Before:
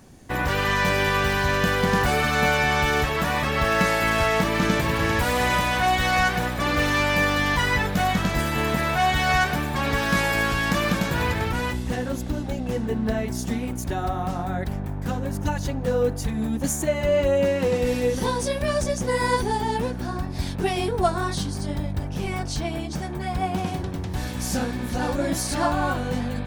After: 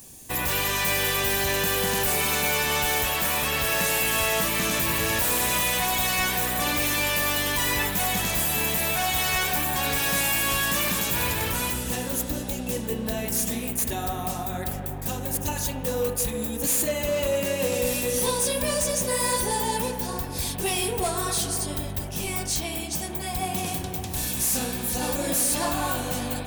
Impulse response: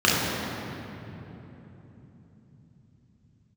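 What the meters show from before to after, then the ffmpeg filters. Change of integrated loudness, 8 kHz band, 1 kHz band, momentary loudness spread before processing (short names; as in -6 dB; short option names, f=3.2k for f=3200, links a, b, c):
-0.5 dB, +9.0 dB, -5.0 dB, 8 LU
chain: -filter_complex "[0:a]aemphasis=mode=production:type=50kf,aexciter=amount=1.3:drive=9.1:freq=2.7k,asoftclip=type=hard:threshold=-16.5dB,asplit=2[a][b];[b]highpass=410,lowpass=5.1k[c];[1:a]atrim=start_sample=2205,lowpass=f=3.2k:w=0.5412,lowpass=f=3.2k:w=1.3066[d];[c][d]afir=irnorm=-1:irlink=0,volume=-23dB[e];[a][e]amix=inputs=2:normalize=0,volume=-5dB"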